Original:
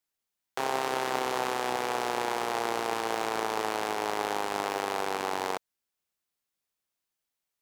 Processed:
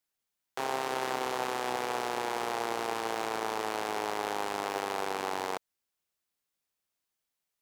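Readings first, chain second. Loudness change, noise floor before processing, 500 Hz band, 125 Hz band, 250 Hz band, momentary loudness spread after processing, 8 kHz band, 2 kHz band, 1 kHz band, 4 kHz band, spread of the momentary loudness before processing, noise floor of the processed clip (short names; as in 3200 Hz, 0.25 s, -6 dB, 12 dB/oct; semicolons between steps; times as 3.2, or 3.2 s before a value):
-2.5 dB, under -85 dBFS, -2.5 dB, -2.5 dB, -2.5 dB, 2 LU, -2.5 dB, -2.5 dB, -2.5 dB, -2.5 dB, 2 LU, under -85 dBFS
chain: limiter -18 dBFS, peak gain reduction 5.5 dB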